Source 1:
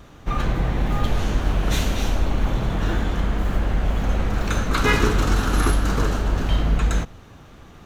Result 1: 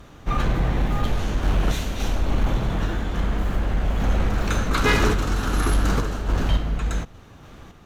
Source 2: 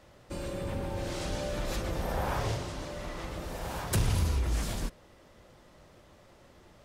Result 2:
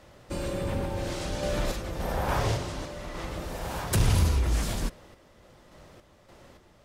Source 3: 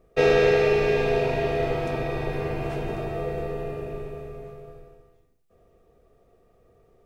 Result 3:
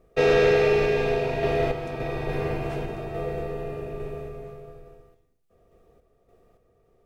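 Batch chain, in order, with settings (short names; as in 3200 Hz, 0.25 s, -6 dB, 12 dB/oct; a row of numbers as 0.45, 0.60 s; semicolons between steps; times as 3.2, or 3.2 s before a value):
random-step tremolo; sine folder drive 5 dB, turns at -5 dBFS; normalise peaks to -12 dBFS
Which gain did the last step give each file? -7.0, -3.5, -7.0 dB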